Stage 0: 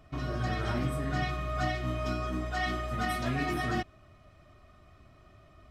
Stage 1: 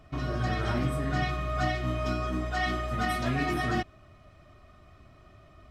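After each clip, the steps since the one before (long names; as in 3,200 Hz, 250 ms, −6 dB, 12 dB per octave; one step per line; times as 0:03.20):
high-shelf EQ 9,400 Hz −3.5 dB
level +2.5 dB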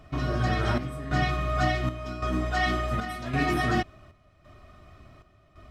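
square-wave tremolo 0.9 Hz, depth 65%, duty 70%
level +3.5 dB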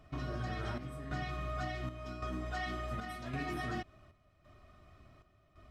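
downward compressor, threshold −26 dBFS, peak gain reduction 6.5 dB
level −8.5 dB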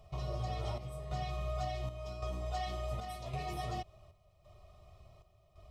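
phaser with its sweep stopped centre 660 Hz, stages 4
level +3.5 dB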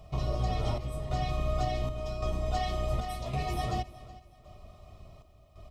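sub-octave generator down 1 octave, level −2 dB
repeating echo 370 ms, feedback 34%, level −19 dB
level +6 dB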